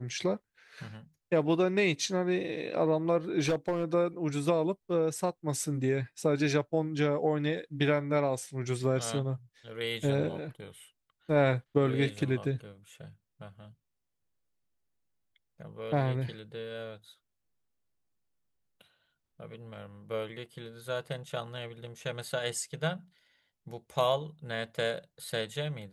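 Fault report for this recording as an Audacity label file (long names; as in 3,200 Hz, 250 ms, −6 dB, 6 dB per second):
3.390000	3.850000	clipping −23.5 dBFS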